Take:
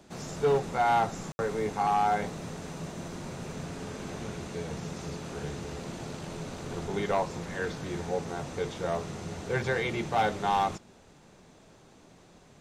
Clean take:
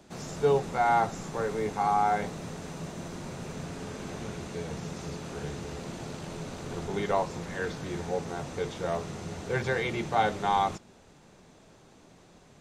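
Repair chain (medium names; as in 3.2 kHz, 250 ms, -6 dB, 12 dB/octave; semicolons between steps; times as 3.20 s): clip repair -19.5 dBFS; room tone fill 1.32–1.39 s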